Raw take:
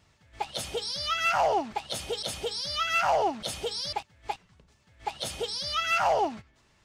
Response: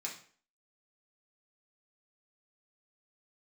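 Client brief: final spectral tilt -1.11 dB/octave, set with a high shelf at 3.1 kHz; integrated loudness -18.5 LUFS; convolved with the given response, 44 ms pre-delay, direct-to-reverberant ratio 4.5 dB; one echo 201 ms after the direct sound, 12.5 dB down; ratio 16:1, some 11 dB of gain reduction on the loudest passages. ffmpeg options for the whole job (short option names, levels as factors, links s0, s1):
-filter_complex "[0:a]highshelf=f=3100:g=5,acompressor=threshold=0.0282:ratio=16,aecho=1:1:201:0.237,asplit=2[s0][s1];[1:a]atrim=start_sample=2205,adelay=44[s2];[s1][s2]afir=irnorm=-1:irlink=0,volume=0.596[s3];[s0][s3]amix=inputs=2:normalize=0,volume=5.31"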